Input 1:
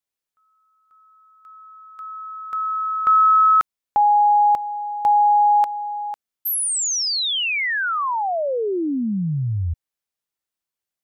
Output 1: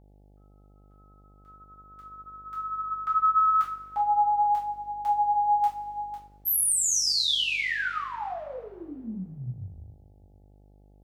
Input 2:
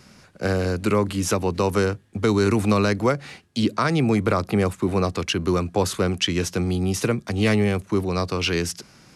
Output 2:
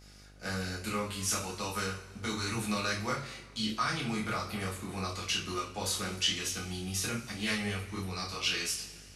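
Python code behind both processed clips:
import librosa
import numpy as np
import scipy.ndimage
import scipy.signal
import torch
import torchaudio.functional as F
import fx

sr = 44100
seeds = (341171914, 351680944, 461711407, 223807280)

y = fx.rev_double_slope(x, sr, seeds[0], early_s=0.3, late_s=1.7, knee_db=-18, drr_db=-5.0)
y = fx.chorus_voices(y, sr, voices=4, hz=0.39, base_ms=27, depth_ms=5.0, mix_pct=35)
y = fx.tone_stack(y, sr, knobs='5-5-5')
y = fx.dmg_buzz(y, sr, base_hz=50.0, harmonics=17, level_db=-56.0, tilt_db=-6, odd_only=False)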